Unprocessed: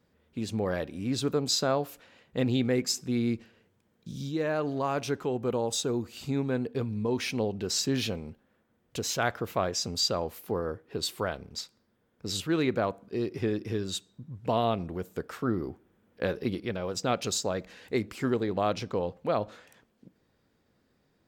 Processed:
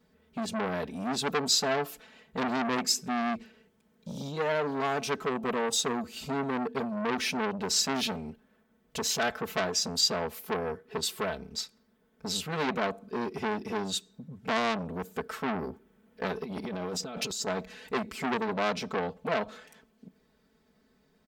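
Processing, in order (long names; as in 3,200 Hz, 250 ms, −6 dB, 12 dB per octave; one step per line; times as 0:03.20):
comb filter 4.6 ms, depth 98%
0:16.44–0:17.47: compressor whose output falls as the input rises −34 dBFS, ratio −1
saturating transformer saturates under 2,400 Hz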